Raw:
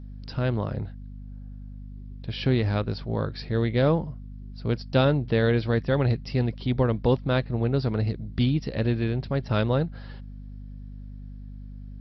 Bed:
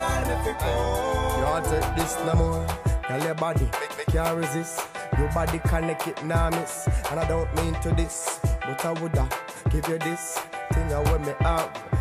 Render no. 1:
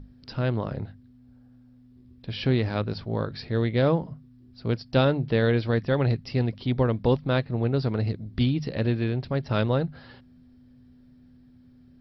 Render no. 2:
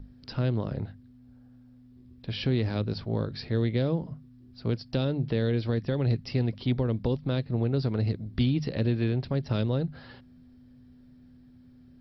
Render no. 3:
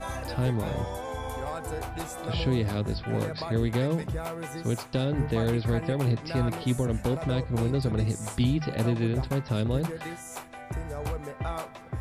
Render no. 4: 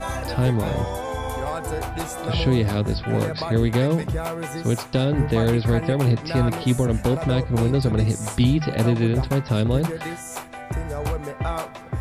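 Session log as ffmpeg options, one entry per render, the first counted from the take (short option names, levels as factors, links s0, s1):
-af "bandreject=f=50:t=h:w=6,bandreject=f=100:t=h:w=6,bandreject=f=150:t=h:w=6,bandreject=f=200:t=h:w=6"
-filter_complex "[0:a]alimiter=limit=0.168:level=0:latency=1:release=150,acrossover=split=490|3000[s0][s1][s2];[s1]acompressor=threshold=0.0112:ratio=6[s3];[s0][s3][s2]amix=inputs=3:normalize=0"
-filter_complex "[1:a]volume=0.316[s0];[0:a][s0]amix=inputs=2:normalize=0"
-af "volume=2.11"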